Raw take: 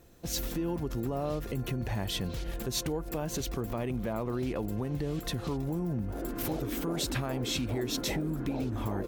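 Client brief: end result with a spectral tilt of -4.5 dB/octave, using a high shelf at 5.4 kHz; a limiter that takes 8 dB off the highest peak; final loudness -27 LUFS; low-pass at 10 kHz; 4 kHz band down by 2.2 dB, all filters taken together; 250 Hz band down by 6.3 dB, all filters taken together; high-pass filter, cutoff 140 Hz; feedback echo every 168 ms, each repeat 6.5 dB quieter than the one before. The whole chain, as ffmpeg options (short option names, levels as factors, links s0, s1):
-af "highpass=140,lowpass=10000,equalizer=f=250:t=o:g=-8,equalizer=f=4000:t=o:g=-5.5,highshelf=f=5400:g=7,alimiter=level_in=1.41:limit=0.0631:level=0:latency=1,volume=0.708,aecho=1:1:168|336|504|672|840|1008:0.473|0.222|0.105|0.0491|0.0231|0.0109,volume=3.16"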